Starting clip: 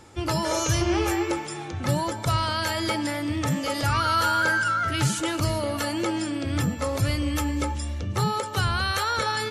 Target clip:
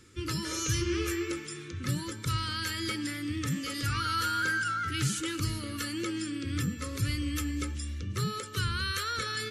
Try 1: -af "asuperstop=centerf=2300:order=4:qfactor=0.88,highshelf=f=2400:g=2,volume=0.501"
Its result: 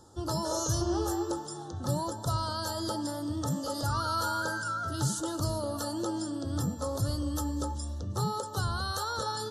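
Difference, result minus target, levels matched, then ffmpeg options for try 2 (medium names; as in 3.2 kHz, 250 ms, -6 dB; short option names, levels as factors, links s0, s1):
2 kHz band -6.5 dB
-af "asuperstop=centerf=740:order=4:qfactor=0.88,highshelf=f=2400:g=2,volume=0.501"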